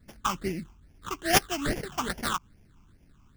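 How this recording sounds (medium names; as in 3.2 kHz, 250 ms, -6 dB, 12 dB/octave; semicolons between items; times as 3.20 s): aliases and images of a low sample rate 2.4 kHz, jitter 20%; phasing stages 8, 2.4 Hz, lowest notch 520–1200 Hz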